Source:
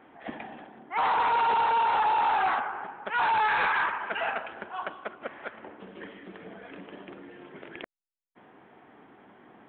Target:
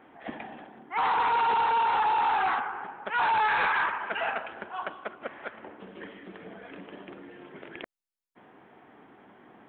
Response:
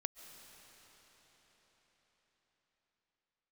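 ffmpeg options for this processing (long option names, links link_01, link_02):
-filter_complex "[0:a]asettb=1/sr,asplit=3[link_01][link_02][link_03];[link_01]atrim=end=0.814[link_04];[link_02]atrim=start=0.81:end=2.87,asetpts=PTS-STARTPTS,afade=type=in:duration=0.004:curve=qsin,afade=type=out:start_time=2.056:duration=0.004:curve=qsin,equalizer=frequency=620:width=7:gain=-10[link_05];[link_03]atrim=start=2.866[link_06];[link_04][link_05]acrossfade=duration=0.004:curve1=hsin:curve2=qsin[link_07];[link_07][link_06]acrossfade=duration=0.004:curve1=qsin:curve2=hsin"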